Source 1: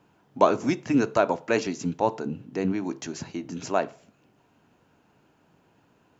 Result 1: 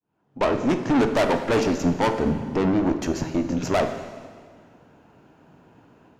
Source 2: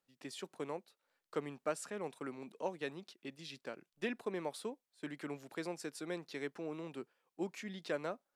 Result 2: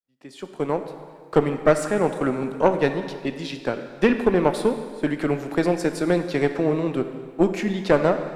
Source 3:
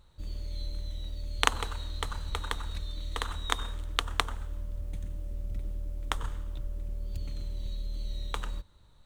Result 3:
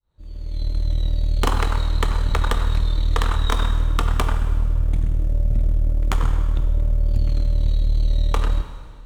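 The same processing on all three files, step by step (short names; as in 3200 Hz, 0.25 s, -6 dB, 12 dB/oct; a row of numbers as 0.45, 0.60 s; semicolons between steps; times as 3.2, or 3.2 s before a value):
opening faded in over 0.99 s; high shelf 2200 Hz -9.5 dB; AGC gain up to 3 dB; tube stage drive 28 dB, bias 0.75; plate-style reverb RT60 1.8 s, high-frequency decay 0.95×, DRR 7.5 dB; match loudness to -23 LUFS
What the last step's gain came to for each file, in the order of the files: +11.0, +22.0, +15.5 dB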